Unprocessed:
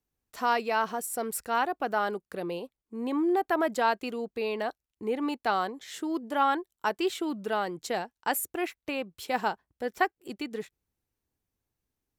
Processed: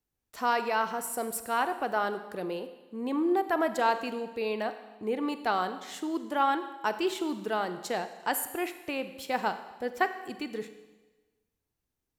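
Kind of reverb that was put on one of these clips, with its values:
four-comb reverb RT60 1.2 s, combs from 33 ms, DRR 10 dB
level −1 dB

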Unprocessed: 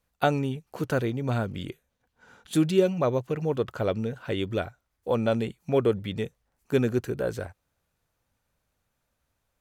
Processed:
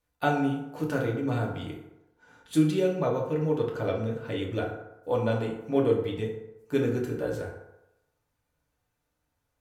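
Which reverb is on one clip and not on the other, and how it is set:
feedback delay network reverb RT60 0.92 s, low-frequency decay 0.8×, high-frequency decay 0.5×, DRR −2 dB
level −6 dB

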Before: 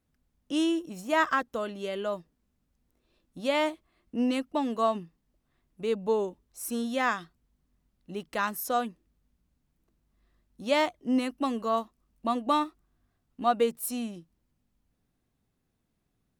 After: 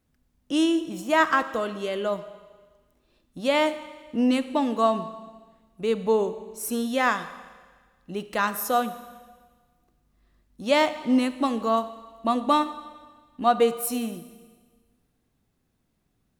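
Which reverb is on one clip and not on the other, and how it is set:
four-comb reverb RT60 1.5 s, combs from 28 ms, DRR 12 dB
level +4.5 dB

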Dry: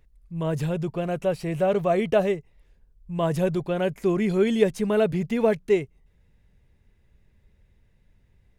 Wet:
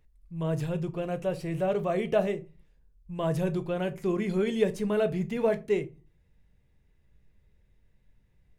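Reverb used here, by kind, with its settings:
rectangular room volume 130 cubic metres, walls furnished, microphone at 0.49 metres
level −5.5 dB

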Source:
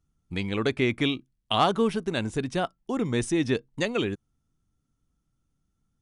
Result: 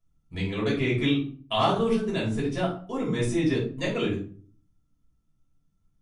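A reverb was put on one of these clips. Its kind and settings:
rectangular room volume 320 cubic metres, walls furnished, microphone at 5.8 metres
level −10.5 dB

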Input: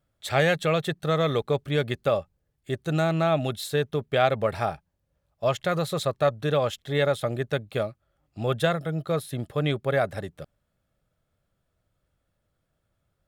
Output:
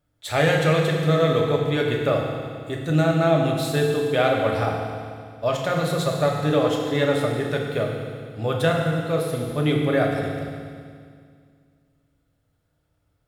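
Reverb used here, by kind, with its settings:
feedback delay network reverb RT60 2.1 s, low-frequency decay 1.25×, high-frequency decay 1×, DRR −1 dB

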